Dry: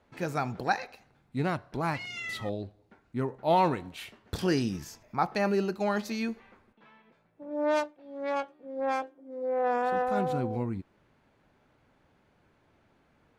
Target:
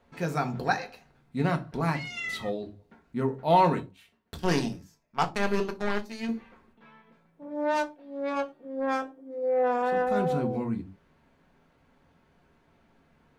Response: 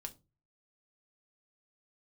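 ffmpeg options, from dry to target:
-filter_complex "[0:a]asettb=1/sr,asplit=3[a][b][c];[a]atrim=end=3.804[d];[b]atrim=start=3.8:end=6.29,asetpts=PTS-STARTPTS,afade=t=in:d=0.004:c=qsin,afade=t=out:st=2.486:d=0.004:c=qsin,aeval=exprs='0.224*(cos(1*acos(clip(val(0)/0.224,-1,1)))-cos(1*PI/2))+0.0282*(cos(7*acos(clip(val(0)/0.224,-1,1)))-cos(7*PI/2))':c=same[e];[c]atrim=start=6.286[f];[d][e]acrossfade=d=0.004:c1=hsin:c2=qsin[g];[g][f]acrossfade=d=0.004:c1=qsin:c2=hsin[h];[1:a]atrim=start_sample=2205,afade=t=out:st=0.22:d=0.01,atrim=end_sample=10143,asetrate=48510,aresample=44100[i];[h][i]afir=irnorm=-1:irlink=0,volume=6.5dB"

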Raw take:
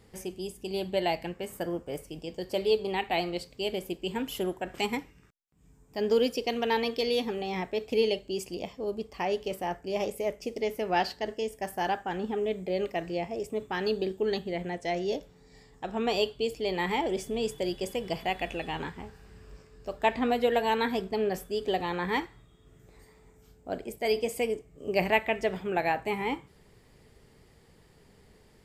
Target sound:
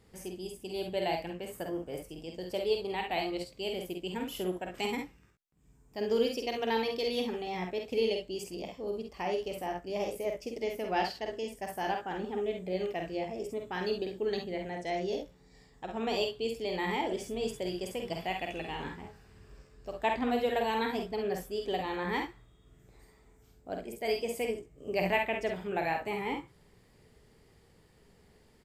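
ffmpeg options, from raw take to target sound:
-af "aecho=1:1:49|66:0.562|0.376,volume=-5dB"

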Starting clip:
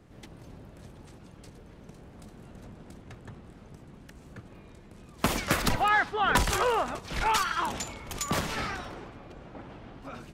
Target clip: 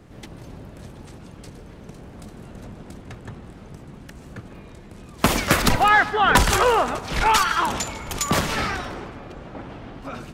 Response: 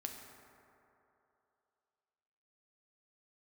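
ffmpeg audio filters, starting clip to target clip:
-filter_complex "[0:a]asplit=2[a][b];[1:a]atrim=start_sample=2205,adelay=149[c];[b][c]afir=irnorm=-1:irlink=0,volume=-14dB[d];[a][d]amix=inputs=2:normalize=0,volume=8dB"

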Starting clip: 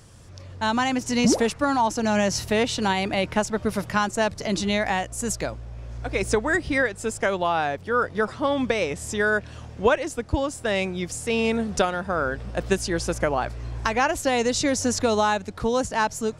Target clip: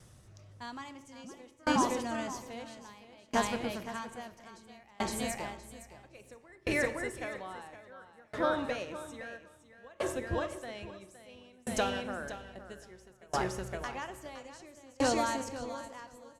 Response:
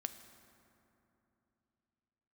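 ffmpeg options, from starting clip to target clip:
-filter_complex "[0:a]asetrate=48091,aresample=44100,atempo=0.917004,aecho=1:1:515|1030|1545|2060|2575:0.668|0.274|0.112|0.0461|0.0189[a];[1:a]atrim=start_sample=2205,afade=t=out:st=0.44:d=0.01,atrim=end_sample=19845,asetrate=70560,aresample=44100[b];[a][b]afir=irnorm=-1:irlink=0,aeval=exprs='val(0)*pow(10,-31*if(lt(mod(0.6*n/s,1),2*abs(0.6)/1000),1-mod(0.6*n/s,1)/(2*abs(0.6)/1000),(mod(0.6*n/s,1)-2*abs(0.6)/1000)/(1-2*abs(0.6)/1000))/20)':c=same"

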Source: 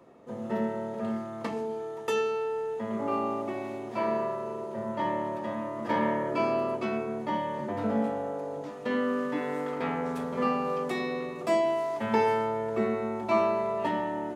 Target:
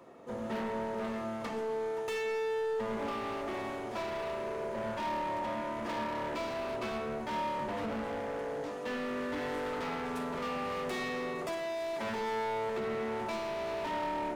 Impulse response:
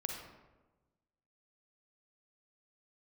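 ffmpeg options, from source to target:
-filter_complex "[0:a]lowshelf=f=390:g=-6,alimiter=level_in=1dB:limit=-24dB:level=0:latency=1:release=415,volume=-1dB,asoftclip=type=hard:threshold=-37.5dB,asplit=2[a][b];[1:a]atrim=start_sample=2205,afade=t=out:st=0.32:d=0.01,atrim=end_sample=14553[c];[b][c]afir=irnorm=-1:irlink=0,volume=0dB[d];[a][d]amix=inputs=2:normalize=0,volume=-2dB"

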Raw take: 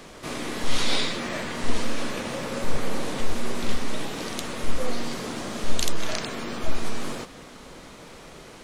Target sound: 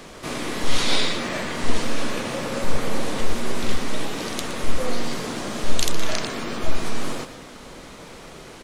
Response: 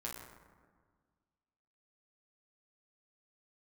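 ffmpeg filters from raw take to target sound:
-af "aecho=1:1:117:0.251,volume=3dB"

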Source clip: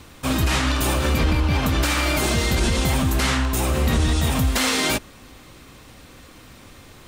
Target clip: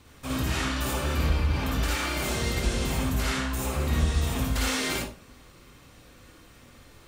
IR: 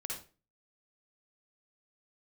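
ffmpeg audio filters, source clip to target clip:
-filter_complex "[1:a]atrim=start_sample=2205[a];[0:a][a]afir=irnorm=-1:irlink=0,volume=-7dB"

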